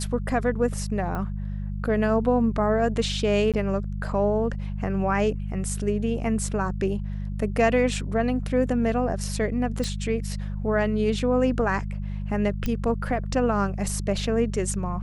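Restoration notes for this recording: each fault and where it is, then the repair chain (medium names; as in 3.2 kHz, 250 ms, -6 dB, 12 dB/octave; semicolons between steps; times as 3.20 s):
hum 50 Hz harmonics 4 -30 dBFS
1.15 s: pop -20 dBFS
3.52–3.54 s: dropout 17 ms
9.84 s: pop
12.66 s: pop -14 dBFS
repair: de-click; de-hum 50 Hz, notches 4; interpolate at 3.52 s, 17 ms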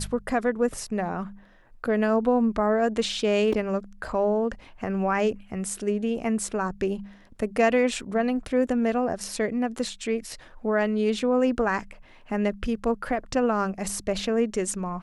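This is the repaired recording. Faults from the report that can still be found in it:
1.15 s: pop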